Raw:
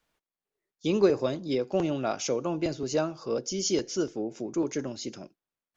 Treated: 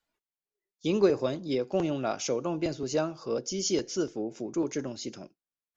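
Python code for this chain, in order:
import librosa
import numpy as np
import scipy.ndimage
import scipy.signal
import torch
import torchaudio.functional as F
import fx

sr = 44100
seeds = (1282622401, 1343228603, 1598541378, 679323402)

y = fx.noise_reduce_blind(x, sr, reduce_db=9)
y = y * librosa.db_to_amplitude(-1.0)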